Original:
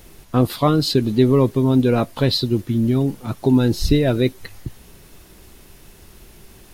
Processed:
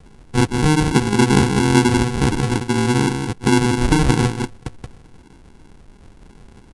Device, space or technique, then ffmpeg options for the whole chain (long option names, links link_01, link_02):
crushed at another speed: -af "aecho=1:1:176:0.531,asetrate=88200,aresample=44100,acrusher=samples=36:mix=1:aa=0.000001,asetrate=22050,aresample=44100"